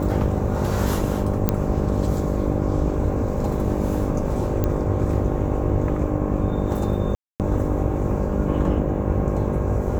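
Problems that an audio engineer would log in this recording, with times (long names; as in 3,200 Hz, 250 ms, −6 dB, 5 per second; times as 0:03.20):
mains buzz 50 Hz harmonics 12 −26 dBFS
0:01.49: click −5 dBFS
0:04.64: click −10 dBFS
0:07.15–0:07.40: drop-out 248 ms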